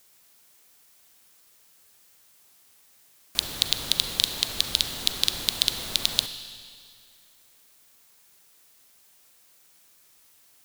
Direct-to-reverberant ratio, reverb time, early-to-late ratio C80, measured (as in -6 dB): 9.0 dB, 2.2 s, 10.5 dB